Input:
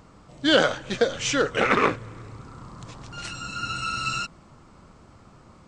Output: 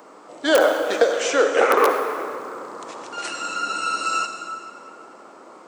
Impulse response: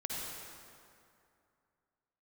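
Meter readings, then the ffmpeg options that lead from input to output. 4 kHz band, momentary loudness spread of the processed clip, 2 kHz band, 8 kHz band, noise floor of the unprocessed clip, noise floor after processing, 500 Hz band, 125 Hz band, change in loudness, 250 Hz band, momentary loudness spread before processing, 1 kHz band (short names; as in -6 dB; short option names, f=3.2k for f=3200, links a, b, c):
-1.5 dB, 17 LU, +2.0 dB, +3.0 dB, -52 dBFS, -46 dBFS, +6.5 dB, under -15 dB, +3.5 dB, -1.0 dB, 22 LU, +6.0 dB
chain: -filter_complex "[0:a]aeval=exprs='(mod(2.11*val(0)+1,2)-1)/2.11':c=same,equalizer=f=3.9k:w=0.5:g=-8.5,acrossover=split=440|1300|5100[a][b][c][d];[a]acompressor=threshold=-37dB:ratio=4[e];[b]acompressor=threshold=-26dB:ratio=4[f];[c]acompressor=threshold=-41dB:ratio=4[g];[d]acompressor=threshold=-43dB:ratio=4[h];[e][f][g][h]amix=inputs=4:normalize=0,highpass=f=340:w=0.5412,highpass=f=340:w=1.3066,asplit=2[i][j];[1:a]atrim=start_sample=2205[k];[j][k]afir=irnorm=-1:irlink=0,volume=-3dB[l];[i][l]amix=inputs=2:normalize=0,volume=8dB"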